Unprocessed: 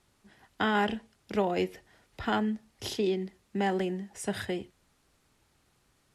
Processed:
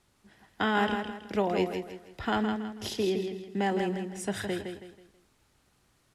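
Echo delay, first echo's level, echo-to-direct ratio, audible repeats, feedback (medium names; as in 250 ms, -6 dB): 162 ms, -6.5 dB, -6.0 dB, 4, 35%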